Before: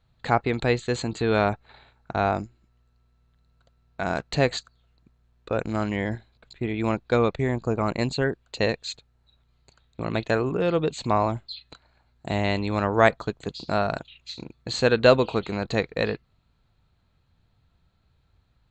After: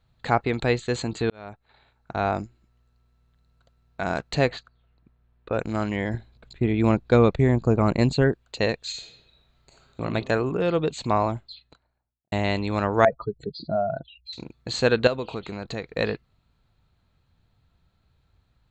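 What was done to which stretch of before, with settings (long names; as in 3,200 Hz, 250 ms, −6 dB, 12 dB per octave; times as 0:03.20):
0:01.30–0:02.41: fade in
0:04.48–0:05.54: low-pass filter 2,900 Hz
0:06.14–0:08.32: low-shelf EQ 440 Hz +7.5 dB
0:08.89–0:10.01: thrown reverb, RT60 1.1 s, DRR −3 dB
0:11.15–0:12.32: fade out and dull
0:13.05–0:14.33: expanding power law on the bin magnitudes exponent 2.7
0:15.07–0:15.91: downward compressor 2 to 1, threshold −32 dBFS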